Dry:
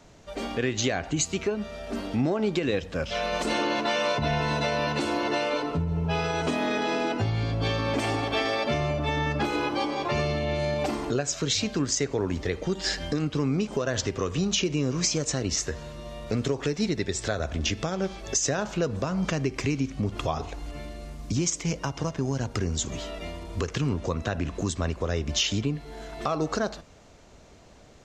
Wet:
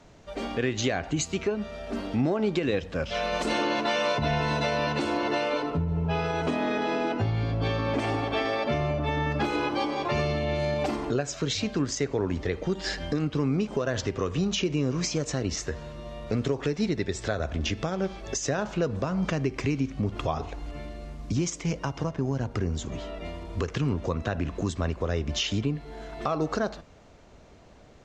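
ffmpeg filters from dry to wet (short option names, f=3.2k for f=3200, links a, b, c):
-af "asetnsamples=n=441:p=0,asendcmd='3.14 lowpass f 7400;4.93 lowpass f 4400;5.7 lowpass f 2500;9.32 lowpass f 5700;10.96 lowpass f 3300;22.04 lowpass f 1800;23.25 lowpass f 3300',lowpass=f=4.7k:p=1"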